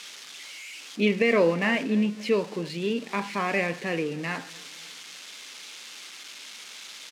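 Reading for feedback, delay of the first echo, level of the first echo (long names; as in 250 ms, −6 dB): 45%, 278 ms, −22.0 dB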